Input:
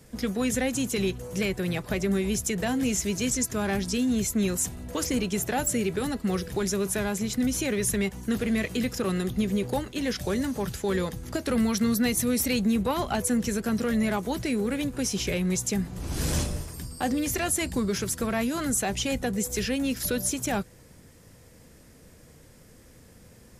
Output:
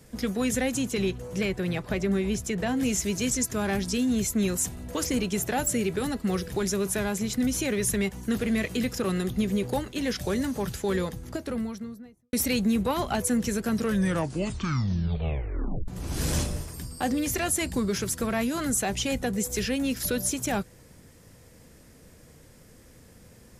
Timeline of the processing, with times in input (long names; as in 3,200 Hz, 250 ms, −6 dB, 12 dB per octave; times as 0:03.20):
0:00.78–0:02.76: low-pass filter 5,800 Hz → 3,500 Hz 6 dB per octave
0:10.83–0:12.33: fade out and dull
0:13.75: tape stop 2.13 s